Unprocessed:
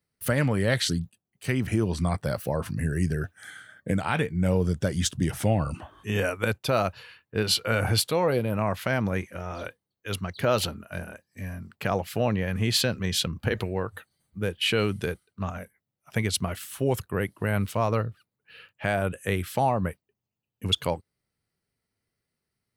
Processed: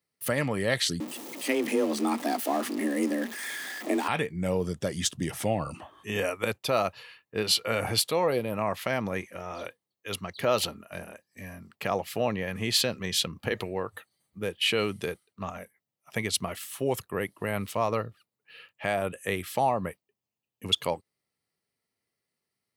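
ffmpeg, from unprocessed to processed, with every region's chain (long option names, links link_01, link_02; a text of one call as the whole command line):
ffmpeg -i in.wav -filter_complex "[0:a]asettb=1/sr,asplit=3[link_01][link_02][link_03];[link_01]atrim=end=1.004[link_04];[link_02]atrim=start=1:end=4.08,asetpts=PTS-STARTPTS,afade=type=in:duration=0.004:curve=qsin,afade=type=out:start_time=3.076:duration=0.004:curve=qsin,aeval=exprs='val(0)+0.5*0.0251*sgn(val(0))':channel_layout=same,afreqshift=140[link_05];[link_03]atrim=start=4.076[link_06];[link_04][link_05]acrossfade=duration=0.004:curve1=hsin:curve2=qsin[link_07];[link_07][link_06]acrossfade=duration=0.004:curve1=qsin:curve2=hsin,highpass=frequency=310:poles=1,bandreject=frequency=1500:width=7.8" out.wav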